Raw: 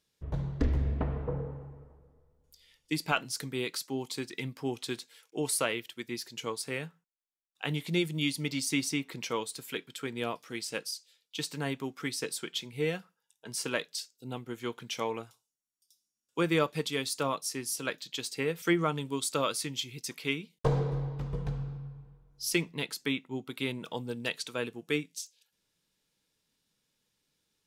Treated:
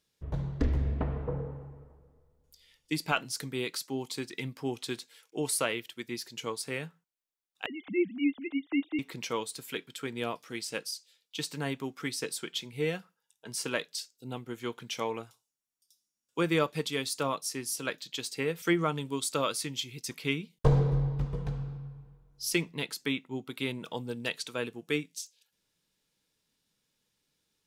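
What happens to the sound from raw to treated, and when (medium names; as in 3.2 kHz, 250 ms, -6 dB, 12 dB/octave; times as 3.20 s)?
7.66–8.99 s: formants replaced by sine waves
20.09–21.25 s: bass shelf 150 Hz +9.5 dB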